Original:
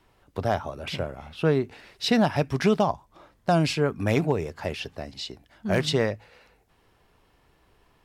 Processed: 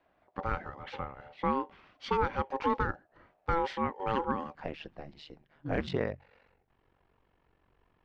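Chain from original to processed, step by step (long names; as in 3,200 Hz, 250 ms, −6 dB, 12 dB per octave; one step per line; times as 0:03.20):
ring modulation 670 Hz, from 0:04.55 75 Hz, from 0:05.87 23 Hz
low-pass filter 2,500 Hz 12 dB per octave
level −5 dB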